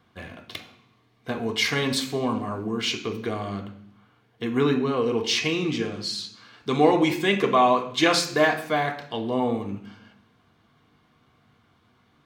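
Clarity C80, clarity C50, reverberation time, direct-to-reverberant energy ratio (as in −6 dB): 13.5 dB, 10.0 dB, 0.60 s, 0.5 dB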